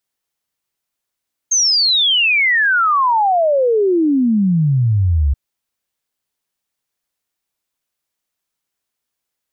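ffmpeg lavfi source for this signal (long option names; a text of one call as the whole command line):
ffmpeg -f lavfi -i "aevalsrc='0.282*clip(min(t,3.83-t)/0.01,0,1)*sin(2*PI*6500*3.83/log(66/6500)*(exp(log(66/6500)*t/3.83)-1))':duration=3.83:sample_rate=44100" out.wav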